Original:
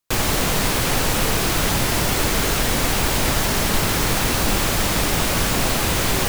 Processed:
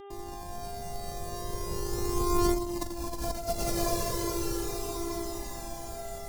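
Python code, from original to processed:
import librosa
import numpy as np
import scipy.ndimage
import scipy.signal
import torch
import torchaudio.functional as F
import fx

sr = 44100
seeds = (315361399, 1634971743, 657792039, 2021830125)

p1 = np.r_[np.sort(x[:len(x) // 128 * 128].reshape(-1, 128), axis=1).ravel(), x[len(x) // 128 * 128:]]
p2 = fx.doppler_pass(p1, sr, speed_mps=6, closest_m=1.6, pass_at_s=2.85)
p3 = fx.comb_fb(p2, sr, f0_hz=320.0, decay_s=0.68, harmonics='all', damping=0.0, mix_pct=50)
p4 = p3 + fx.echo_feedback(p3, sr, ms=215, feedback_pct=40, wet_db=-4.0, dry=0)
p5 = fx.dmg_buzz(p4, sr, base_hz=400.0, harmonics=9, level_db=-47.0, tilt_db=-5, odd_only=False)
p6 = fx.band_shelf(p5, sr, hz=2200.0, db=-12.5, octaves=1.7)
p7 = fx.echo_thinned(p6, sr, ms=412, feedback_pct=70, hz=210.0, wet_db=-4.5)
p8 = fx.over_compress(p7, sr, threshold_db=-30.0, ratio=-0.5)
p9 = fx.dynamic_eq(p8, sr, hz=420.0, q=1.6, threshold_db=-46.0, ratio=4.0, max_db=5)
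p10 = fx.comb_cascade(p9, sr, direction='falling', hz=0.38)
y = p10 * 10.0 ** (5.0 / 20.0)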